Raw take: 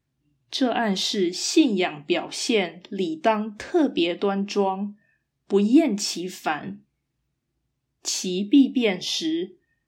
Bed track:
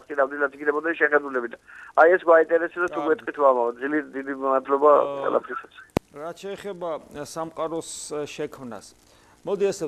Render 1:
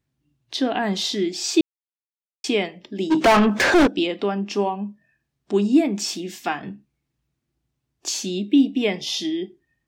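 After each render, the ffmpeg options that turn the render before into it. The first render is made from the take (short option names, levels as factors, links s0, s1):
-filter_complex "[0:a]asplit=3[s0][s1][s2];[s0]afade=t=out:st=3.1:d=0.02[s3];[s1]asplit=2[s4][s5];[s5]highpass=f=720:p=1,volume=56.2,asoftclip=type=tanh:threshold=0.422[s6];[s4][s6]amix=inputs=2:normalize=0,lowpass=f=2800:p=1,volume=0.501,afade=t=in:st=3.1:d=0.02,afade=t=out:st=3.86:d=0.02[s7];[s2]afade=t=in:st=3.86:d=0.02[s8];[s3][s7][s8]amix=inputs=3:normalize=0,asplit=3[s9][s10][s11];[s9]atrim=end=1.61,asetpts=PTS-STARTPTS,afade=t=out:st=1.606:d=0.004:c=hsin[s12];[s10]atrim=start=1.61:end=2.44,asetpts=PTS-STARTPTS,volume=0[s13];[s11]atrim=start=2.44,asetpts=PTS-STARTPTS,afade=t=in:d=0.004:c=hsin[s14];[s12][s13][s14]concat=n=3:v=0:a=1"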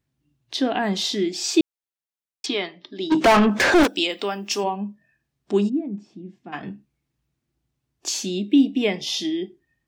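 -filter_complex "[0:a]asettb=1/sr,asplit=3[s0][s1][s2];[s0]atrim=end=2.464[s3];[s1]atrim=start=2.46:end=3.12,asetpts=PTS-STARTPTS,afade=t=in:d=0.004:c=qsin,afade=t=out:st=0.656:d=0.004:c=qsin,highpass=180,equalizer=f=210:t=q:w=4:g=-10,equalizer=f=490:t=q:w=4:g=-10,equalizer=f=740:t=q:w=4:g=-4,equalizer=f=1200:t=q:w=4:g=4,equalizer=f=2600:t=q:w=4:g=-6,equalizer=f=3900:t=q:w=4:g=9,lowpass=f=5500:w=0.5412,lowpass=f=5500:w=1.3066[s4];[s2]atrim=start=3.116[s5];[s3][s4]acrossfade=d=0.004:c1=hsin:c2=qsin[s6];[s6][s5]acrossfade=d=0.004:c1=qsin:c2=hsin,asplit=3[s7][s8][s9];[s7]afade=t=out:st=3.83:d=0.02[s10];[s8]aemphasis=mode=production:type=riaa,afade=t=in:st=3.83:d=0.02,afade=t=out:st=4.63:d=0.02[s11];[s9]afade=t=in:st=4.63:d=0.02[s12];[s10][s11][s12]amix=inputs=3:normalize=0,asplit=3[s13][s14][s15];[s13]afade=t=out:st=5.68:d=0.02[s16];[s14]bandpass=f=130:t=q:w=1.3,afade=t=in:st=5.68:d=0.02,afade=t=out:st=6.52:d=0.02[s17];[s15]afade=t=in:st=6.52:d=0.02[s18];[s16][s17][s18]amix=inputs=3:normalize=0"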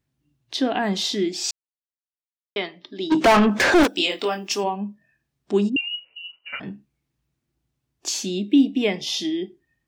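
-filter_complex "[0:a]asettb=1/sr,asplit=3[s0][s1][s2];[s0]atrim=end=3.944[s3];[s1]atrim=start=3.94:end=4.51,asetpts=PTS-STARTPTS,afade=t=in:d=0.004:c=qsin,afade=t=out:st=0.566:d=0.004:c=qsin,asplit=2[s4][s5];[s5]adelay=22,volume=0.668[s6];[s4][s6]amix=inputs=2:normalize=0,atrim=end_sample=25137[s7];[s2]atrim=start=4.506[s8];[s3][s7]acrossfade=d=0.004:c1=hsin:c2=qsin[s9];[s9][s8]acrossfade=d=0.004:c1=qsin:c2=hsin,asettb=1/sr,asplit=3[s10][s11][s12];[s10]atrim=end=5.764[s13];[s11]atrim=start=5.76:end=6.6,asetpts=PTS-STARTPTS,afade=t=in:d=0.004:c=qsin,afade=t=out:st=0.836:d=0.004:c=qsin,lowpass=f=2600:t=q:w=0.5098,lowpass=f=2600:t=q:w=0.6013,lowpass=f=2600:t=q:w=0.9,lowpass=f=2600:t=q:w=2.563,afreqshift=-3100[s14];[s12]atrim=start=6.596[s15];[s13][s14]acrossfade=d=0.004:c1=hsin:c2=qsin[s16];[s16][s15]acrossfade=d=0.004:c1=qsin:c2=hsin,asplit=3[s17][s18][s19];[s17]atrim=end=1.51,asetpts=PTS-STARTPTS,afade=t=out:st=1.506:d=0.004:c=hsin[s20];[s18]atrim=start=1.51:end=2.56,asetpts=PTS-STARTPTS,volume=0[s21];[s19]atrim=start=2.56,asetpts=PTS-STARTPTS,afade=t=in:d=0.004:c=hsin[s22];[s20][s21][s22]concat=n=3:v=0:a=1"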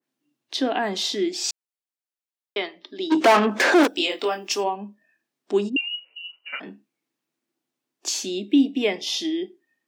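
-af "highpass=f=250:w=0.5412,highpass=f=250:w=1.3066,adynamicequalizer=threshold=0.0316:dfrequency=1900:dqfactor=0.7:tfrequency=1900:tqfactor=0.7:attack=5:release=100:ratio=0.375:range=1.5:mode=cutabove:tftype=highshelf"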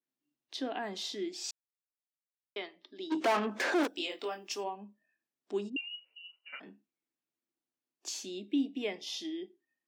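-af "volume=0.224"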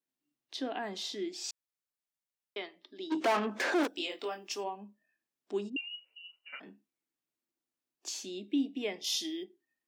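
-filter_complex "[0:a]asettb=1/sr,asplit=3[s0][s1][s2];[s0]atrim=end=9.044[s3];[s1]atrim=start=9.04:end=9.44,asetpts=PTS-STARTPTS,afade=t=in:d=0.004:c=qsin,afade=t=out:st=0.396:d=0.004:c=qsin,aemphasis=mode=production:type=75kf[s4];[s2]atrim=start=9.436[s5];[s3][s4]acrossfade=d=0.004:c1=hsin:c2=qsin[s6];[s6][s5]acrossfade=d=0.004:c1=qsin:c2=hsin"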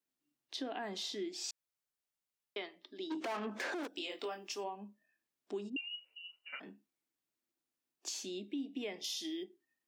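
-af "alimiter=level_in=1.5:limit=0.0631:level=0:latency=1:release=157,volume=0.668,acompressor=threshold=0.0112:ratio=2"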